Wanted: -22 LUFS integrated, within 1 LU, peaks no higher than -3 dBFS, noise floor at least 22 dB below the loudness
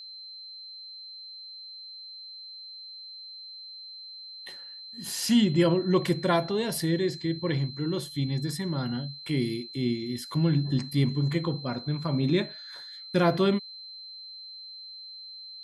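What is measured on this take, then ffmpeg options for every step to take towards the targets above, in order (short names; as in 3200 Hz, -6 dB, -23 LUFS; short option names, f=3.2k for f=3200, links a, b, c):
steady tone 4100 Hz; tone level -41 dBFS; loudness -27.5 LUFS; peak -10.5 dBFS; loudness target -22.0 LUFS
-> -af "bandreject=f=4.1k:w=30"
-af "volume=5.5dB"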